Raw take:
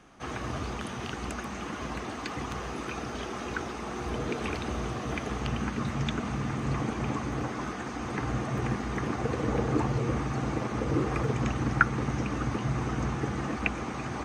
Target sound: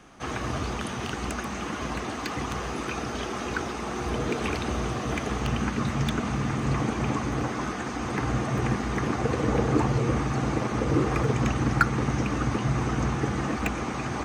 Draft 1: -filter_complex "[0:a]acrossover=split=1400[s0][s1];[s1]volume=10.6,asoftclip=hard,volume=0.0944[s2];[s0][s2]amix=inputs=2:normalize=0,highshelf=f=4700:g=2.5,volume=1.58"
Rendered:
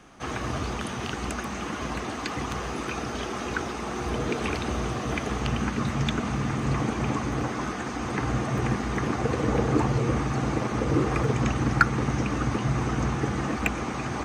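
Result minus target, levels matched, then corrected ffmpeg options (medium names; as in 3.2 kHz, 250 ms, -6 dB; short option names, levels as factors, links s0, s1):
overload inside the chain: distortion -5 dB
-filter_complex "[0:a]acrossover=split=1400[s0][s1];[s1]volume=29.9,asoftclip=hard,volume=0.0335[s2];[s0][s2]amix=inputs=2:normalize=0,highshelf=f=4700:g=2.5,volume=1.58"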